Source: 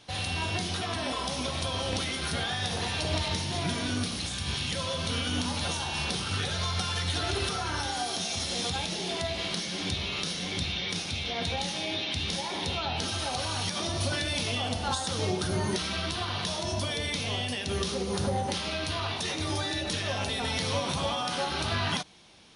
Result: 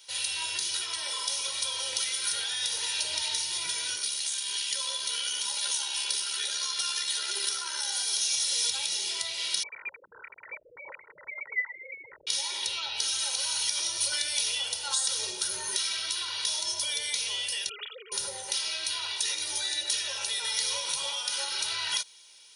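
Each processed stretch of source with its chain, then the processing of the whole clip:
3.96–7.92 s: comb 5 ms, depth 46% + AM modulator 69 Hz, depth 25% + brick-wall FIR high-pass 170 Hz
9.63–12.27 s: formants replaced by sine waves + distance through air 330 m + frequency inversion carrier 2.8 kHz
17.69–18.12 s: formants replaced by sine waves + high-pass 660 Hz
whole clip: differentiator; comb 2.1 ms, depth 91%; trim +6 dB

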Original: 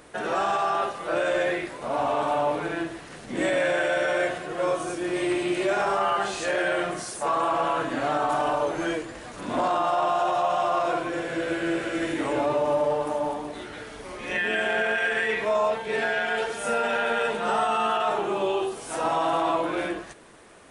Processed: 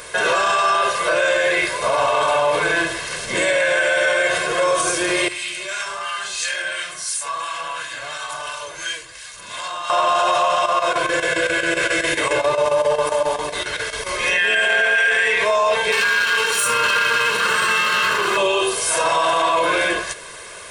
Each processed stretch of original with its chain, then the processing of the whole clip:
5.28–9.90 s: amplifier tone stack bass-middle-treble 5-5-5 + harmonic tremolo 2.9 Hz, depth 50%, crossover 1.2 kHz
10.55–14.14 s: compression 1.5:1, threshold -29 dBFS + square tremolo 7.4 Hz, depth 65%, duty 80%
15.92–18.37 s: comb filter that takes the minimum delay 0.7 ms + high-pass 170 Hz
whole clip: tilt shelf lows -7 dB, about 1.1 kHz; comb 1.9 ms, depth 71%; loudness maximiser +20.5 dB; trim -8.5 dB

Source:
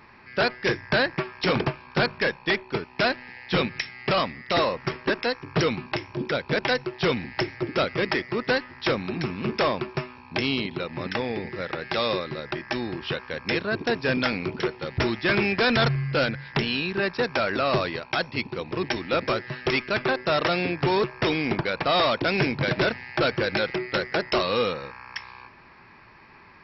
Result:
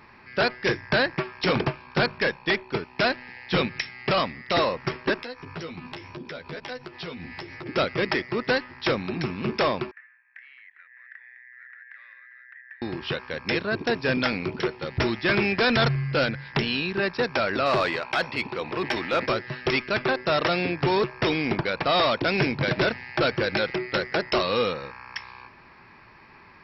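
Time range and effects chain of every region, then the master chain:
5.20–7.66 s: compression 8:1, threshold -35 dBFS + doubling 12 ms -3.5 dB
9.91–12.82 s: Butterworth band-pass 1.8 kHz, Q 5.3 + compression 2:1, threshold -45 dBFS
17.66–19.26 s: transient shaper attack -3 dB, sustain +4 dB + overdrive pedal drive 11 dB, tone 2.8 kHz, clips at -13 dBFS
whole clip: none

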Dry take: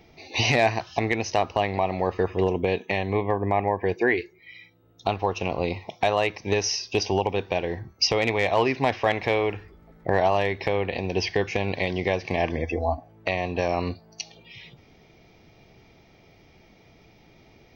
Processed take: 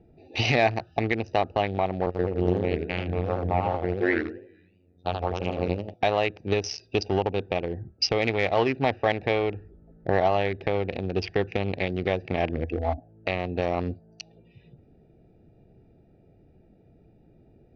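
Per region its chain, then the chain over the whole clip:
2.06–5.94 s: robot voice 89.7 Hz + modulated delay 82 ms, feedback 45%, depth 219 cents, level -4 dB
whole clip: local Wiener filter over 41 samples; low-pass 5.4 kHz 24 dB/octave; band-stop 990 Hz, Q 9.5

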